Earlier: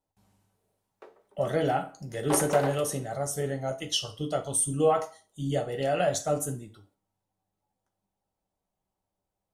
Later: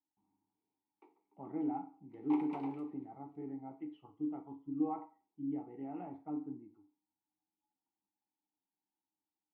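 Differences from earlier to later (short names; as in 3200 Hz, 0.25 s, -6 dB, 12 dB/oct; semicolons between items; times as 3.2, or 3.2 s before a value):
speech: add LPF 1600 Hz 24 dB/oct; master: add vowel filter u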